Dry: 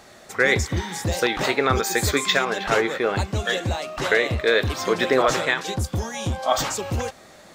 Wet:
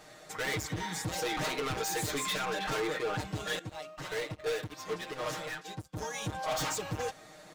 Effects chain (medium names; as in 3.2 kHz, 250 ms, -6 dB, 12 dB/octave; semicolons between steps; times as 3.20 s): overload inside the chain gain 25.5 dB; comb 6.5 ms, depth 95%; 3.59–5.97 s: upward expansion 2.5:1, over -38 dBFS; trim -8 dB